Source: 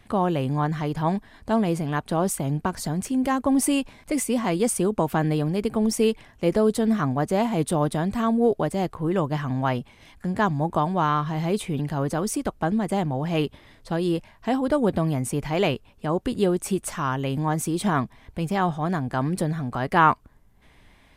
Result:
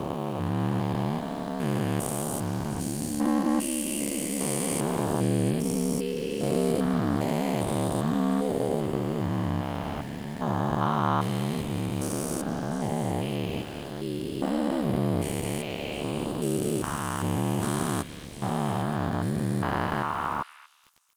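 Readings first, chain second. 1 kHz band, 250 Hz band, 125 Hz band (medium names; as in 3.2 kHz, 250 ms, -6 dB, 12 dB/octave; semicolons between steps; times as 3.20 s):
-5.5 dB, -3.5 dB, -2.5 dB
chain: spectrogram pixelated in time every 400 ms; treble shelf 7.1 kHz +10 dB; level rider gain up to 4 dB; ring modulator 36 Hz; small samples zeroed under -44 dBFS; repeats whose band climbs or falls 234 ms, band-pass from 2.7 kHz, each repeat 0.7 oct, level -5 dB; trim -1 dB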